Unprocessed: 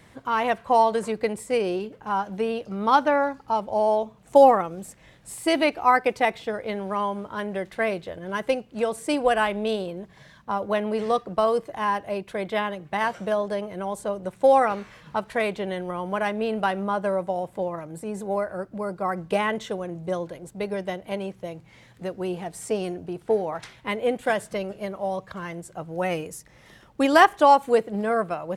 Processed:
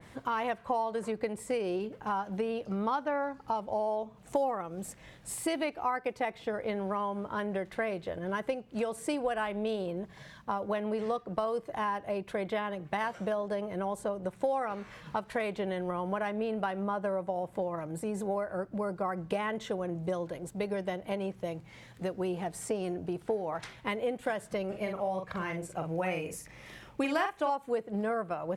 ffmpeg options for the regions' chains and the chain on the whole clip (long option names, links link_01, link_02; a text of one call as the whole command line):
ffmpeg -i in.wav -filter_complex "[0:a]asettb=1/sr,asplit=3[link_01][link_02][link_03];[link_01]atrim=end=24.684[link_04];[link_02]atrim=start=24.68:end=27.5,asetpts=PTS-STARTPTS,afade=type=in:duration=0.004:curve=qsin,afade=type=out:start_time=2.816:duration=0.004:curve=qsin,equalizer=frequency=2400:width=4.2:gain=8,asplit=2[link_05][link_06];[link_06]adelay=43,volume=-5.5dB[link_07];[link_05][link_07]amix=inputs=2:normalize=0,atrim=end_sample=124362[link_08];[link_03]atrim=start=27.496[link_09];[link_04][link_08]acrossfade=duration=0.004:curve1=hsin:curve2=qsin[link_10];[link_10][link_09]acrossfade=duration=0.004:curve1=qsin:curve2=hsin,acompressor=threshold=-30dB:ratio=4,adynamicequalizer=threshold=0.00355:dfrequency=2400:dqfactor=0.7:tfrequency=2400:tqfactor=0.7:attack=5:release=100:ratio=0.375:range=2.5:mode=cutabove:tftype=highshelf" out.wav